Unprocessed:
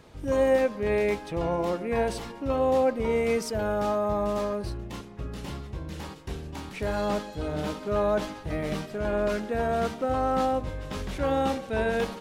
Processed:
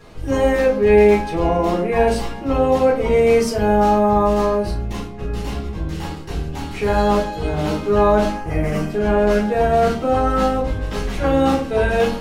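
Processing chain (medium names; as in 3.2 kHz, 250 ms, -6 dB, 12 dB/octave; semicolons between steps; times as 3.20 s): 8.34–8.90 s: peaking EQ 3.8 kHz -14 dB 0.48 oct; reverberation RT60 0.35 s, pre-delay 3 ms, DRR -5 dB; trim +1 dB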